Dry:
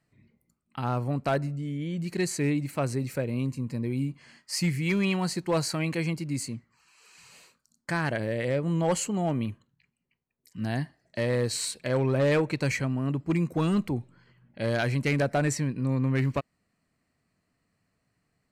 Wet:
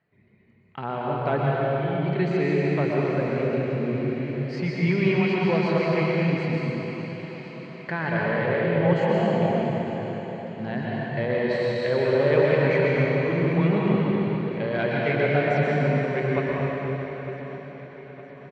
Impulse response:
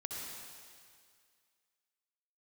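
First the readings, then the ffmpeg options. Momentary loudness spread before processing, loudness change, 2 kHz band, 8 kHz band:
8 LU, +4.5 dB, +6.0 dB, below −20 dB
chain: -filter_complex "[0:a]equalizer=frequency=300:width=1.6:gain=-8.5,asplit=2[link_01][link_02];[link_02]acompressor=threshold=-36dB:ratio=6,volume=-1dB[link_03];[link_01][link_03]amix=inputs=2:normalize=0,highpass=100,equalizer=frequency=120:width_type=q:width=4:gain=-7,equalizer=frequency=390:width_type=q:width=4:gain=9,equalizer=frequency=1200:width_type=q:width=4:gain=-4,equalizer=frequency=2700:width_type=q:width=4:gain=-4,lowpass=frequency=3100:width=0.5412,lowpass=frequency=3100:width=1.3066,aecho=1:1:907|1814|2721|3628|4535:0.158|0.0903|0.0515|0.0294|0.0167[link_04];[1:a]atrim=start_sample=2205,asetrate=22932,aresample=44100[link_05];[link_04][link_05]afir=irnorm=-1:irlink=0"

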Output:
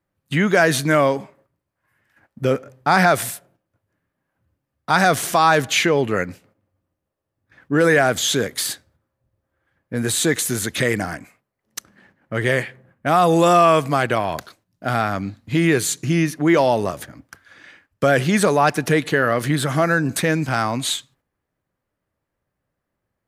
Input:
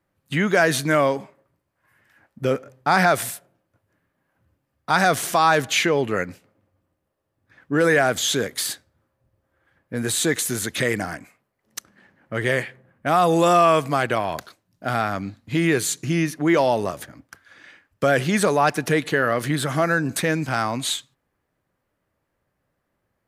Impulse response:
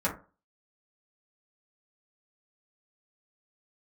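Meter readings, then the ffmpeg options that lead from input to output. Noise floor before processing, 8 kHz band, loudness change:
−76 dBFS, +2.0 dB, +2.5 dB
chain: -af "agate=range=-7dB:threshold=-57dB:ratio=16:detection=peak,lowshelf=frequency=190:gain=3,volume=2dB"

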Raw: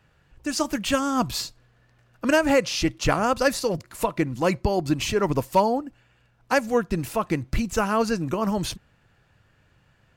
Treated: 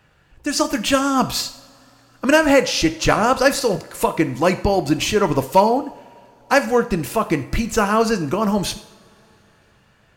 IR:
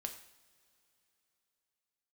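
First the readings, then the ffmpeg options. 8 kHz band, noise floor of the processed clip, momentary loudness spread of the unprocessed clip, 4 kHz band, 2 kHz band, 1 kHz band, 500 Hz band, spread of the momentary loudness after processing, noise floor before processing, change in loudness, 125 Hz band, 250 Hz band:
+6.5 dB, −56 dBFS, 8 LU, +6.5 dB, +6.5 dB, +6.0 dB, +6.0 dB, 8 LU, −63 dBFS, +5.5 dB, +3.0 dB, +5.0 dB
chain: -filter_complex "[0:a]asplit=2[link_01][link_02];[1:a]atrim=start_sample=2205,lowshelf=frequency=140:gain=-10[link_03];[link_02][link_03]afir=irnorm=-1:irlink=0,volume=5dB[link_04];[link_01][link_04]amix=inputs=2:normalize=0,volume=-1dB"

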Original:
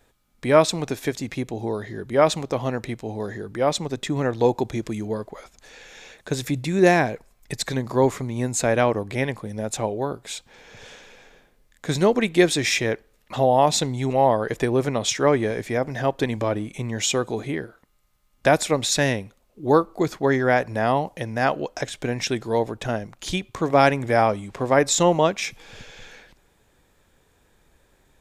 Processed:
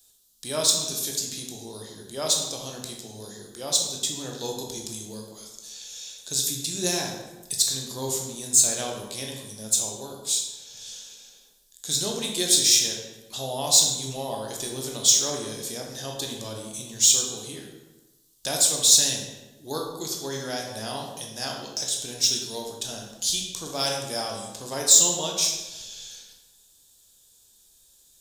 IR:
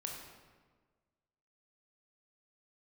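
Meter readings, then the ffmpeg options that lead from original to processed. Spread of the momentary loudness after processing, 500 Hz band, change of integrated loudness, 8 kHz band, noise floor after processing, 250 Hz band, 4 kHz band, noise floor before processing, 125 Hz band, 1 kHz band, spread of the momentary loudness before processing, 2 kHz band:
21 LU, −13.0 dB, −0.5 dB, +10.5 dB, −58 dBFS, −12.5 dB, +6.0 dB, −63 dBFS, −12.5 dB, −13.0 dB, 12 LU, −12.5 dB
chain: -filter_complex "[0:a]aexciter=amount=8.8:drive=9.6:freq=3300[link_01];[1:a]atrim=start_sample=2205,asetrate=61740,aresample=44100[link_02];[link_01][link_02]afir=irnorm=-1:irlink=0,volume=-9.5dB"

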